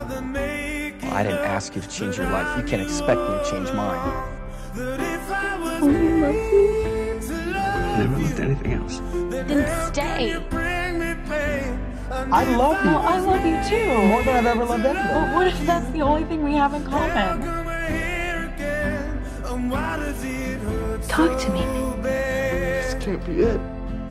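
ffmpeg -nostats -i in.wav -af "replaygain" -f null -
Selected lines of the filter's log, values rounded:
track_gain = +2.4 dB
track_peak = 0.256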